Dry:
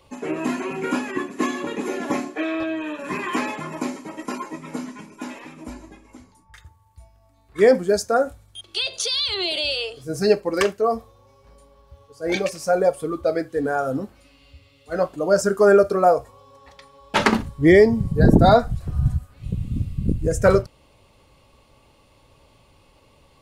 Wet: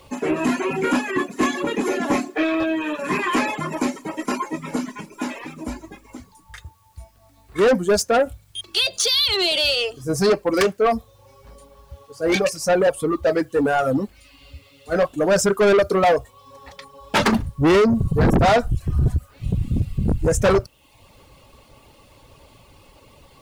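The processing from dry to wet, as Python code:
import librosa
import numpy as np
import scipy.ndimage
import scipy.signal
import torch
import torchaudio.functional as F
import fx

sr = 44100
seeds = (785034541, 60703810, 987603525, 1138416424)

y = fx.dereverb_blind(x, sr, rt60_s=0.57)
y = 10.0 ** (-19.5 / 20.0) * np.tanh(y / 10.0 ** (-19.5 / 20.0))
y = fx.quant_dither(y, sr, seeds[0], bits=12, dither='triangular')
y = y * librosa.db_to_amplitude(7.0)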